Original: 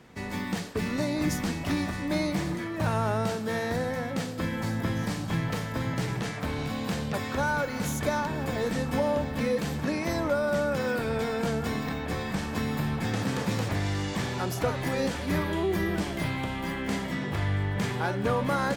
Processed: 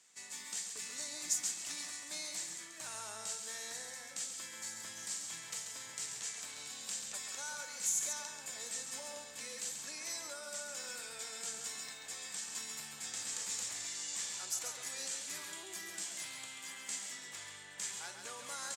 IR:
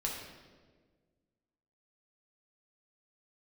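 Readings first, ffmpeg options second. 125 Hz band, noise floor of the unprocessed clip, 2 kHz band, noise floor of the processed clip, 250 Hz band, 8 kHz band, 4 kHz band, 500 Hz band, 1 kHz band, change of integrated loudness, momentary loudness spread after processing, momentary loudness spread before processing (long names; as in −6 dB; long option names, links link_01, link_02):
−36.5 dB, −34 dBFS, −13.5 dB, −51 dBFS, −31.5 dB, +6.5 dB, −4.5 dB, −24.5 dB, −19.5 dB, −10.5 dB, 7 LU, 4 LU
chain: -af "bandpass=frequency=7500:width_type=q:width=3.7:csg=0,aecho=1:1:136:0.473,volume=9.5dB"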